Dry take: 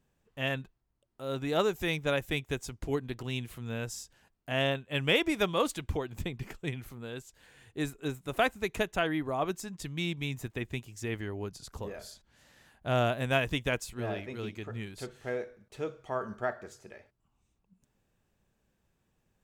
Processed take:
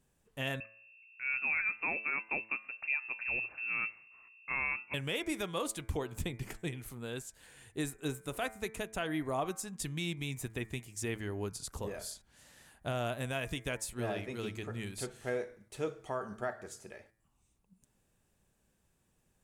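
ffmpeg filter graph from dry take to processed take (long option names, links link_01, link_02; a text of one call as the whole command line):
ffmpeg -i in.wav -filter_complex "[0:a]asettb=1/sr,asplit=3[link_01][link_02][link_03];[link_01]atrim=end=0.604[link_04];[link_02]atrim=start=0.6:end=4.94,asetpts=PTS-STARTPTS,afade=type=in:duration=0.004:curve=qsin,afade=type=out:start_time=4.336:duration=0.004:curve=qsin,aeval=exprs='val(0)+0.00178*(sin(2*PI*60*n/s)+sin(2*PI*2*60*n/s)/2+sin(2*PI*3*60*n/s)/3+sin(2*PI*4*60*n/s)/4+sin(2*PI*5*60*n/s)/5)':channel_layout=same,highpass=frequency=76:width=0.5412,highpass=frequency=76:width=1.3066,lowpass=frequency=2400:width_type=q:width=0.5098,lowpass=frequency=2400:width_type=q:width=0.6013,lowpass=frequency=2400:width_type=q:width=0.9,lowpass=frequency=2400:width_type=q:width=2.563,afreqshift=-2800[link_05];[link_03]atrim=start=4.936[link_06];[link_04][link_05]acrossfade=duration=0.004:curve1=hsin:curve2=qsin[link_07];[link_07][link_06]acrossfade=duration=0.004:curve1=qsin:curve2=hsin,equalizer=frequency=9600:width_type=o:width=0.87:gain=10.5,alimiter=limit=-24dB:level=0:latency=1:release=294,bandreject=frequency=110:width_type=h:width=4,bandreject=frequency=220:width_type=h:width=4,bandreject=frequency=330:width_type=h:width=4,bandreject=frequency=440:width_type=h:width=4,bandreject=frequency=550:width_type=h:width=4,bandreject=frequency=660:width_type=h:width=4,bandreject=frequency=770:width_type=h:width=4,bandreject=frequency=880:width_type=h:width=4,bandreject=frequency=990:width_type=h:width=4,bandreject=frequency=1100:width_type=h:width=4,bandreject=frequency=1210:width_type=h:width=4,bandreject=frequency=1320:width_type=h:width=4,bandreject=frequency=1430:width_type=h:width=4,bandreject=frequency=1540:width_type=h:width=4,bandreject=frequency=1650:width_type=h:width=4,bandreject=frequency=1760:width_type=h:width=4,bandreject=frequency=1870:width_type=h:width=4,bandreject=frequency=1980:width_type=h:width=4,bandreject=frequency=2090:width_type=h:width=4,bandreject=frequency=2200:width_type=h:width=4,bandreject=frequency=2310:width_type=h:width=4,bandreject=frequency=2420:width_type=h:width=4" out.wav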